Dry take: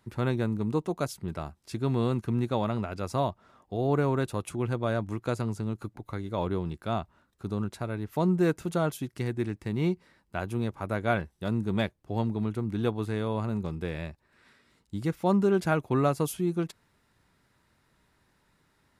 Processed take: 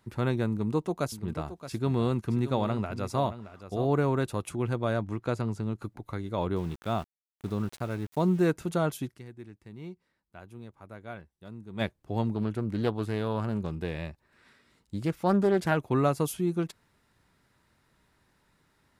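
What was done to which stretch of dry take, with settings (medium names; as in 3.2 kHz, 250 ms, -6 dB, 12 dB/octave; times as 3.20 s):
0.50–3.85 s: delay 622 ms -12.5 dB
5.01–5.82 s: low-pass 3.8 kHz -> 6.8 kHz 6 dB/octave
6.56–8.44 s: small samples zeroed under -44 dBFS
9.12–11.82 s: dip -15 dB, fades 0.30 s exponential
12.34–15.77 s: loudspeaker Doppler distortion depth 0.28 ms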